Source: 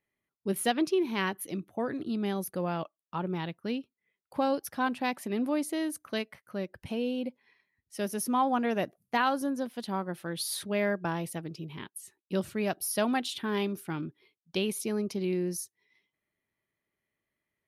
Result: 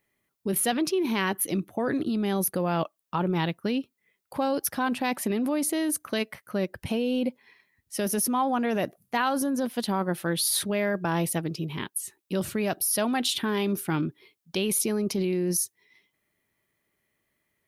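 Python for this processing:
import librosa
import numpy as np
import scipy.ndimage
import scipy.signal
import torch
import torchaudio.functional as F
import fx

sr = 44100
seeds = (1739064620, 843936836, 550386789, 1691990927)

p1 = fx.high_shelf(x, sr, hz=9700.0, db=7.0)
p2 = fx.over_compress(p1, sr, threshold_db=-33.0, ratio=-0.5)
y = p1 + F.gain(torch.from_numpy(p2), 0.5).numpy()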